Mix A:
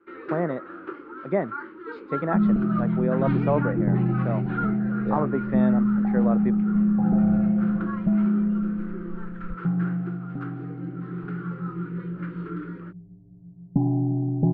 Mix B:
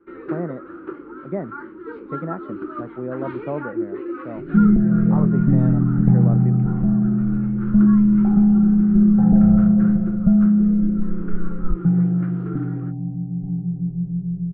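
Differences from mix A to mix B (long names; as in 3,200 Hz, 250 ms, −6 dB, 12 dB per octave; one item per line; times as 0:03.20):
speech −7.0 dB
second sound: entry +2.20 s
master: add spectral tilt −3 dB per octave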